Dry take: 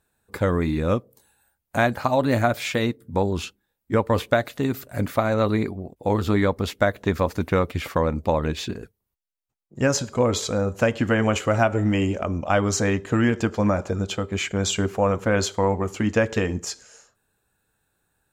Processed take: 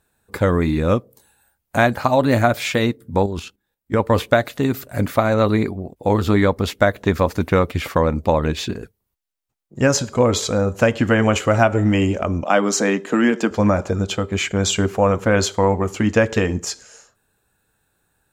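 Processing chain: 3.26–4.00 s: level held to a coarse grid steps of 10 dB; 12.43–13.51 s: steep high-pass 180 Hz 36 dB/octave; trim +4.5 dB

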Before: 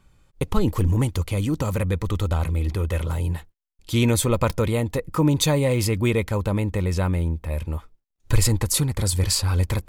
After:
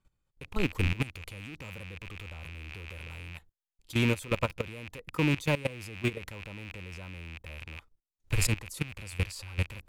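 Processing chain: rattle on loud lows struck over -32 dBFS, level -12 dBFS; level held to a coarse grid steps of 18 dB; trim -6.5 dB

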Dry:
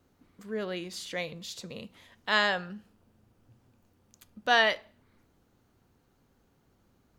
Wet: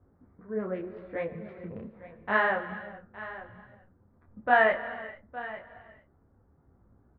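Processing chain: local Wiener filter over 15 samples; inverse Chebyshev low-pass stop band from 9.7 kHz, stop band 80 dB; peaking EQ 69 Hz +9.5 dB 0.97 oct; delay 862 ms -15 dB; gated-style reverb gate 470 ms flat, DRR 11.5 dB; detune thickener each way 30 cents; trim +5.5 dB

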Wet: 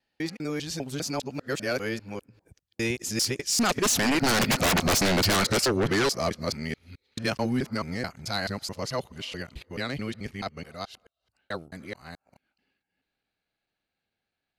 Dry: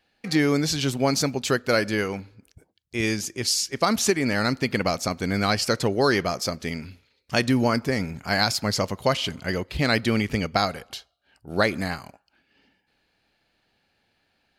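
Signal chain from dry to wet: time reversed locally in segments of 208 ms; Doppler pass-by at 4.77 s, 14 m/s, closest 4.1 m; sine folder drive 19 dB, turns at -10.5 dBFS; trim -8.5 dB

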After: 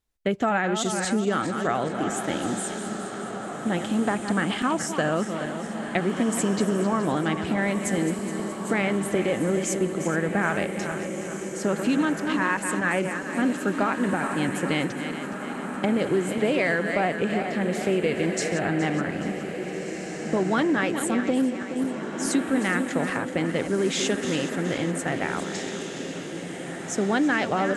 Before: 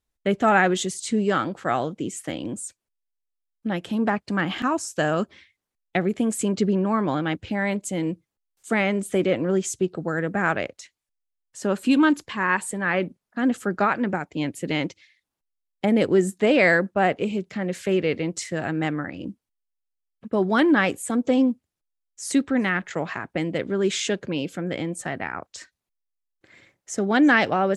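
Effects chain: backward echo that repeats 210 ms, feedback 66%, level -10.5 dB; compression, threshold -21 dBFS, peak gain reduction 8.5 dB; echo that smears into a reverb 1758 ms, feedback 46%, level -8 dB; trim +1 dB

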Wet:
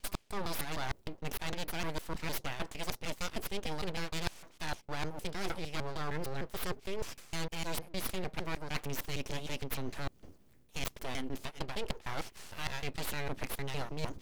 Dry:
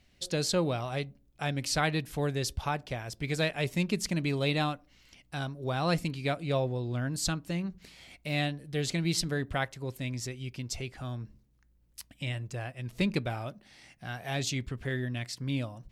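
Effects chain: slices played last to first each 171 ms, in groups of 2; bass shelf 68 Hz -10 dB; reverse; compression 12:1, threshold -42 dBFS, peak gain reduction 19 dB; reverse; full-wave rectifier; tape speed +12%; trim +11 dB

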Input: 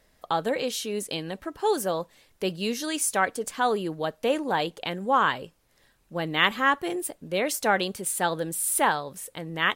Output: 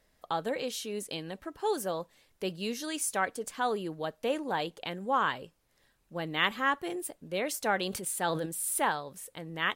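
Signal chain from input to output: 7.77–8.46 s: decay stretcher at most 40 dB/s; trim -6 dB

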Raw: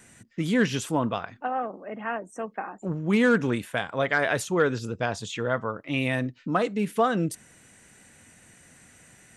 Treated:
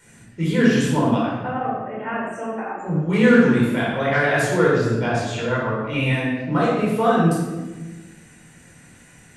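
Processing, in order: simulated room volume 800 m³, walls mixed, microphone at 4.6 m; trim -4.5 dB

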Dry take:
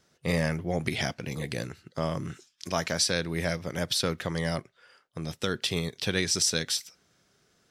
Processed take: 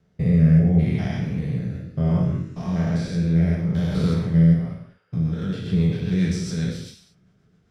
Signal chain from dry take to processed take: spectrogram pixelated in time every 200 ms; treble shelf 3.1 kHz -8.5 dB; 1.70–2.76 s: flutter echo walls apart 3.8 m, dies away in 0.35 s; rotary cabinet horn 0.7 Hz, later 7.5 Hz, at 4.34 s; tone controls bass +14 dB, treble -5 dB; gated-style reverb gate 260 ms falling, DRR -1.5 dB

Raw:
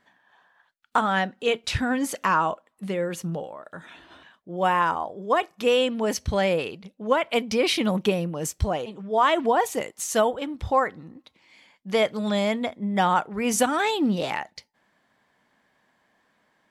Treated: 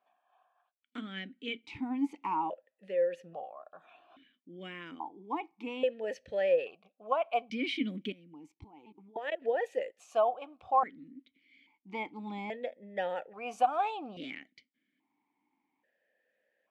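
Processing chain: dynamic bell 850 Hz, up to +5 dB, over -39 dBFS, Q 3.5; 8.12–9.42 s: level held to a coarse grid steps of 20 dB; stepped vowel filter 1.2 Hz

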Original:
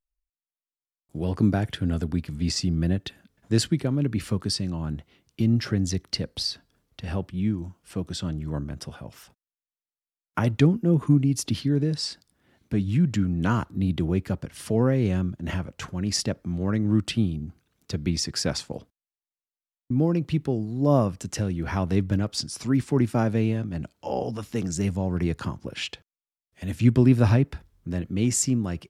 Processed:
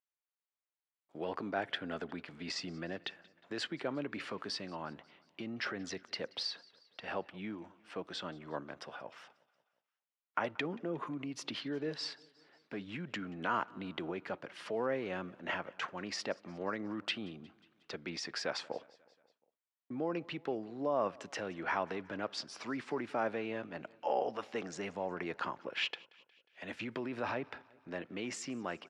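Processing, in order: peak limiter -17.5 dBFS, peak gain reduction 10.5 dB; band-pass 590–2700 Hz; feedback delay 180 ms, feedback 59%, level -24 dB; trim +1 dB

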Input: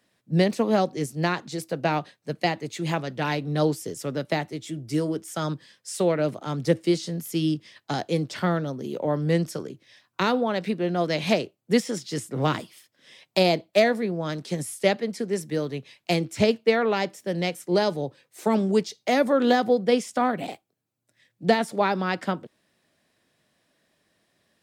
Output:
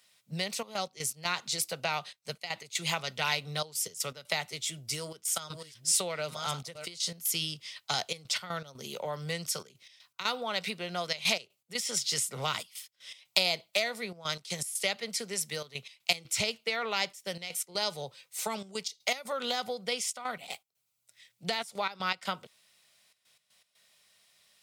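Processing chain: 4.72–6.86 s: chunks repeated in reverse 598 ms, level -9 dB; compression 6:1, threshold -24 dBFS, peak gain reduction 10.5 dB; peaking EQ 300 Hz -14.5 dB 0.5 oct; trance gate "xxxxx.x.x.xx" 120 bpm -12 dB; tilt shelf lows -9.5 dB, about 1.1 kHz; band-stop 1.7 kHz, Q 5.7

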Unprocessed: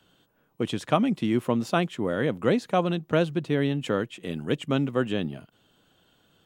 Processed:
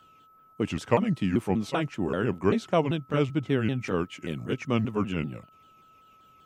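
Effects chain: sawtooth pitch modulation -5 st, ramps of 194 ms; whistle 1.3 kHz -55 dBFS

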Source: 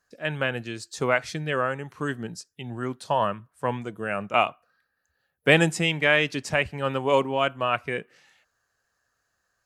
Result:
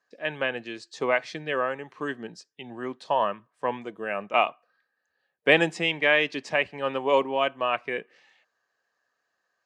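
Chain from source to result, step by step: band-pass 280–4300 Hz; band-stop 1.4 kHz, Q 7.1

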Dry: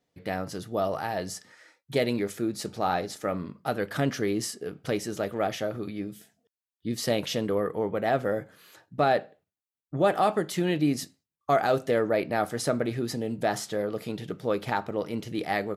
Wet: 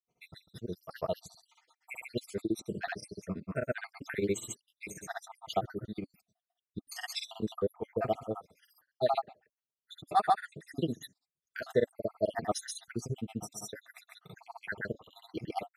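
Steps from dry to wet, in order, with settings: random holes in the spectrogram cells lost 70%; comb of notches 280 Hz; granulator 90 ms, grains 15 per s, spray 143 ms, pitch spread up and down by 0 st; trim +1.5 dB

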